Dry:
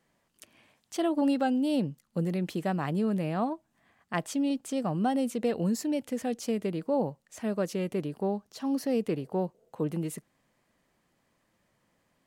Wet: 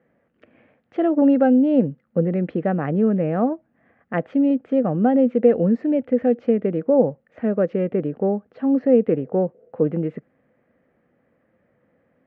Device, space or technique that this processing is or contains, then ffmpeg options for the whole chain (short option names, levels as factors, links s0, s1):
bass cabinet: -af "highpass=63,equalizer=f=250:t=q:w=4:g=5,equalizer=f=500:t=q:w=4:g=9,equalizer=f=990:t=q:w=4:g=-10,lowpass=f=2000:w=0.5412,lowpass=f=2000:w=1.3066,volume=2.24"